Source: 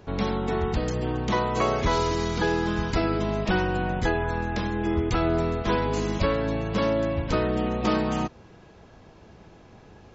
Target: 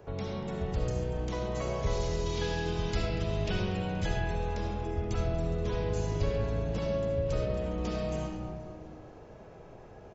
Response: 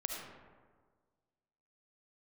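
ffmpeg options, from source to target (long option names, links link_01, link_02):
-filter_complex "[0:a]asettb=1/sr,asplit=3[link_01][link_02][link_03];[link_01]atrim=end=2.264[link_04];[link_02]atrim=start=2.26:end=4.55,asetpts=PTS-STARTPTS,afade=type=in:duration=0.004:curve=qsin,afade=type=out:start_time=2.286:duration=0.004:curve=qsin,equalizer=frequency=3200:width=0.77:gain=8[link_05];[link_03]atrim=start=4.546[link_06];[link_04][link_05]acrossfade=duration=0.004:curve1=hsin:curve2=qsin[link_07];[link_07][link_06]acrossfade=duration=0.004:curve1=qsin:curve2=hsin[link_08];[1:a]atrim=start_sample=2205[link_09];[link_08][link_09]afir=irnorm=-1:irlink=0,acrossover=split=170|3000[link_10][link_11][link_12];[link_11]acompressor=threshold=-45dB:ratio=2[link_13];[link_10][link_13][link_12]amix=inputs=3:normalize=0,equalizer=frequency=125:width_type=o:width=1:gain=3,equalizer=frequency=250:width_type=o:width=1:gain=-6,equalizer=frequency=500:width_type=o:width=1:gain=8,equalizer=frequency=4000:width_type=o:width=1:gain=-6,asplit=7[link_14][link_15][link_16][link_17][link_18][link_19][link_20];[link_15]adelay=238,afreqshift=-130,volume=-17dB[link_21];[link_16]adelay=476,afreqshift=-260,volume=-21dB[link_22];[link_17]adelay=714,afreqshift=-390,volume=-25dB[link_23];[link_18]adelay=952,afreqshift=-520,volume=-29dB[link_24];[link_19]adelay=1190,afreqshift=-650,volume=-33.1dB[link_25];[link_20]adelay=1428,afreqshift=-780,volume=-37.1dB[link_26];[link_14][link_21][link_22][link_23][link_24][link_25][link_26]amix=inputs=7:normalize=0,volume=-3.5dB"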